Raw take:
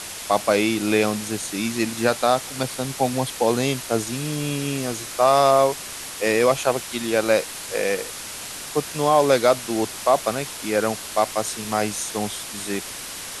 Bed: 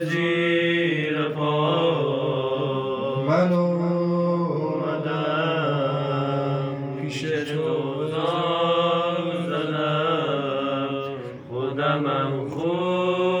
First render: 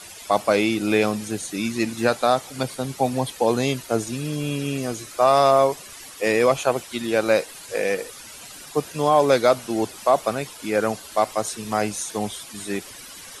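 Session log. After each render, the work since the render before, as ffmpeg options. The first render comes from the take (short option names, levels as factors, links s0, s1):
-af "afftdn=nr=12:nf=-35"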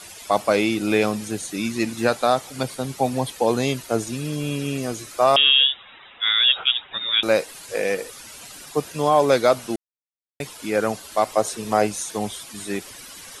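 -filter_complex "[0:a]asettb=1/sr,asplit=3[s0][s1][s2];[s0]atrim=end=5.364[s3];[s1]atrim=start=5.36:end=7.23,asetpts=PTS-STARTPTS,afade=t=in:d=0.004:c=qsin,afade=t=out:st=1.866:d=0.004:c=qsin,lowpass=f=3300:t=q:w=0.5098,lowpass=f=3300:t=q:w=0.6013,lowpass=f=3300:t=q:w=0.9,lowpass=f=3300:t=q:w=2.563,afreqshift=-3900[s4];[s2]atrim=start=7.226[s5];[s3][s4]acrossfade=d=0.004:c1=hsin:c2=qsin[s6];[s6][s5]acrossfade=d=0.004:c1=qsin:c2=hsin,asettb=1/sr,asplit=3[s7][s8][s9];[s7]atrim=end=11.334[s10];[s8]atrim=start=11.33:end=11.87,asetpts=PTS-STARTPTS,afade=t=in:d=0.004:c=qsin,afade=t=out:st=0.536:d=0.004:c=qsin,equalizer=f=530:t=o:w=1.5:g=6[s11];[s9]atrim=start=11.866[s12];[s10][s11]acrossfade=d=0.004:c1=hsin:c2=qsin[s13];[s13][s12]acrossfade=d=0.004:c1=qsin:c2=hsin,asplit=3[s14][s15][s16];[s14]atrim=end=9.76,asetpts=PTS-STARTPTS,afade=t=out:st=9.756:d=0.004:c=hsin[s17];[s15]atrim=start=9.76:end=10.4,asetpts=PTS-STARTPTS,volume=0[s18];[s16]atrim=start=10.4,asetpts=PTS-STARTPTS,afade=t=in:d=0.004:c=hsin[s19];[s17][s18][s19]concat=n=3:v=0:a=1"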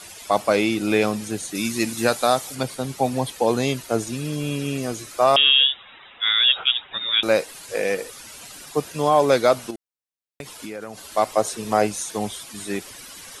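-filter_complex "[0:a]asettb=1/sr,asplit=3[s0][s1][s2];[s0]atrim=end=1.554[s3];[s1]atrim=start=1.55:end=2.55,asetpts=PTS-STARTPTS,afade=t=in:d=0.004:c=qsin,afade=t=out:st=0.996:d=0.004:c=qsin,aemphasis=mode=production:type=cd[s4];[s2]atrim=start=2.546[s5];[s3][s4]acrossfade=d=0.004:c1=hsin:c2=qsin[s6];[s6][s5]acrossfade=d=0.004:c1=qsin:c2=hsin,asettb=1/sr,asplit=3[s7][s8][s9];[s7]atrim=end=9.704[s10];[s8]atrim=start=9.7:end=10.98,asetpts=PTS-STARTPTS,afade=t=in:d=0.004:c=qsin,afade=t=out:st=1.276:d=0.004:c=qsin,acompressor=threshold=0.0316:ratio=6:attack=3.2:release=140:knee=1:detection=peak[s11];[s9]atrim=start=10.976[s12];[s10][s11]acrossfade=d=0.004:c1=hsin:c2=qsin[s13];[s13][s12]acrossfade=d=0.004:c1=qsin:c2=hsin"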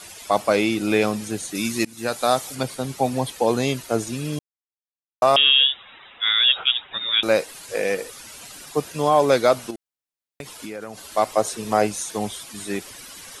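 -filter_complex "[0:a]asplit=4[s0][s1][s2][s3];[s0]atrim=end=1.85,asetpts=PTS-STARTPTS,afade=t=out:st=1.846:d=0.004:c=hsin:silence=0.0891251[s4];[s1]atrim=start=1.85:end=4.39,asetpts=PTS-STARTPTS,afade=t=in:d=0.48:silence=0.0891251,afade=t=out:st=2.536:d=0.004:c=hsin[s5];[s2]atrim=start=4.39:end=5.22,asetpts=PTS-STARTPTS,volume=0[s6];[s3]atrim=start=5.22,asetpts=PTS-STARTPTS,afade=t=in:d=0.004:c=hsin[s7];[s4][s5][s6][s7]concat=n=4:v=0:a=1"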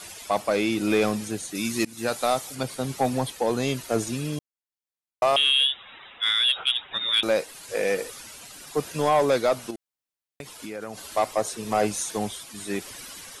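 -af "tremolo=f=1:d=0.33,asoftclip=type=tanh:threshold=0.224"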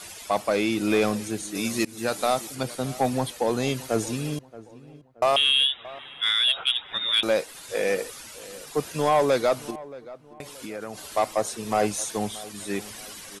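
-filter_complex "[0:a]asplit=2[s0][s1];[s1]adelay=626,lowpass=f=1600:p=1,volume=0.126,asplit=2[s2][s3];[s3]adelay=626,lowpass=f=1600:p=1,volume=0.39,asplit=2[s4][s5];[s5]adelay=626,lowpass=f=1600:p=1,volume=0.39[s6];[s0][s2][s4][s6]amix=inputs=4:normalize=0"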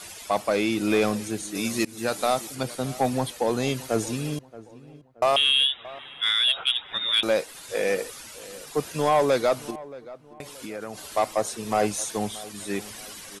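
-af anull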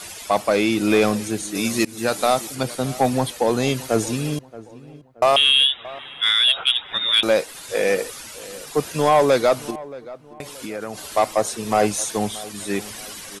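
-af "volume=1.78"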